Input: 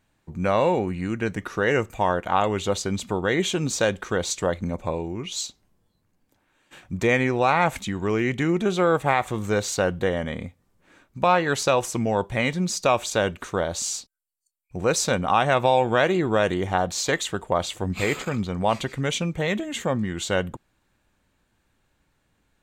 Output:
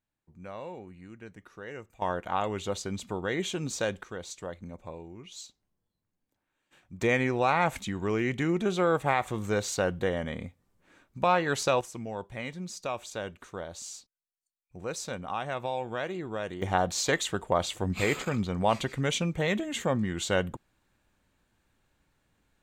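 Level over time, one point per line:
−20 dB
from 0:02.02 −8 dB
from 0:04.03 −14.5 dB
from 0:07.01 −5 dB
from 0:11.81 −13.5 dB
from 0:16.62 −3 dB

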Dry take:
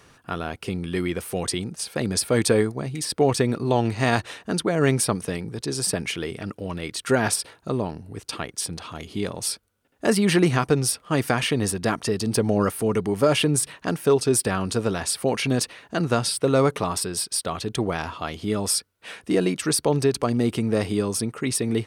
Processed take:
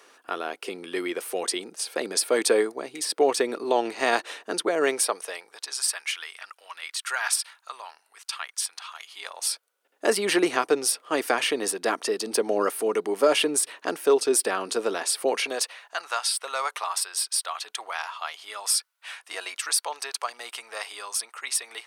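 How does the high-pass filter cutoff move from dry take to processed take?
high-pass filter 24 dB per octave
0:04.78 340 Hz
0:05.85 1,000 Hz
0:09.08 1,000 Hz
0:10.05 330 Hz
0:15.26 330 Hz
0:16.00 830 Hz

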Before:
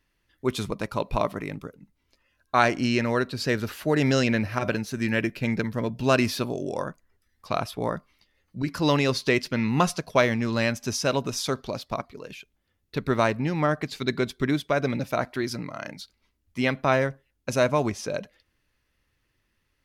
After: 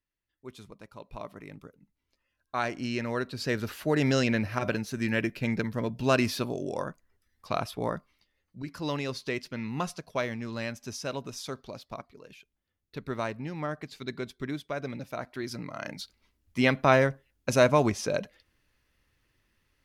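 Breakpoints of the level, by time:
0:00.98 −18.5 dB
0:01.61 −10 dB
0:02.62 −10 dB
0:03.71 −3 dB
0:07.93 −3 dB
0:08.58 −10 dB
0:15.22 −10 dB
0:16.01 +1 dB

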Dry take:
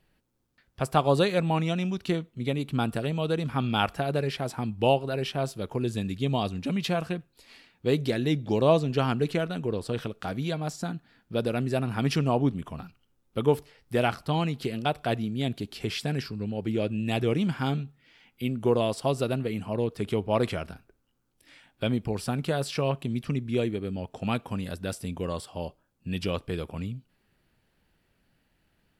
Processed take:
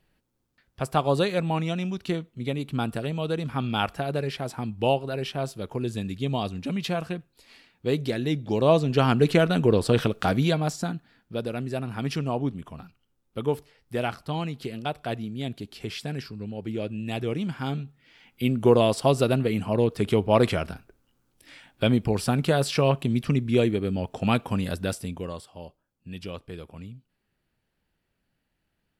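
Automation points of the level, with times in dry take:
0:08.47 −0.5 dB
0:09.56 +9.5 dB
0:10.28 +9.5 dB
0:11.43 −3 dB
0:17.56 −3 dB
0:18.49 +5.5 dB
0:24.81 +5.5 dB
0:25.52 −7 dB

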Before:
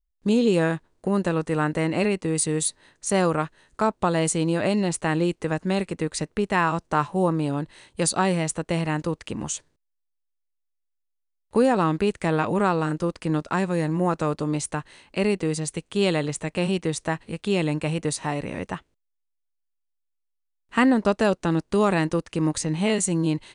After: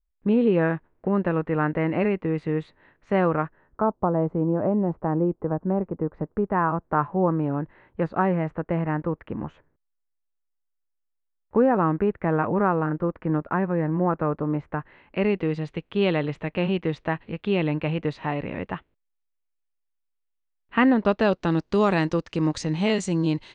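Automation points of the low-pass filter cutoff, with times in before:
low-pass filter 24 dB per octave
0:03.30 2,300 Hz
0:03.94 1,100 Hz
0:05.97 1,100 Hz
0:07.19 1,800 Hz
0:14.69 1,800 Hz
0:15.38 3,100 Hz
0:20.82 3,100 Hz
0:21.63 5,700 Hz

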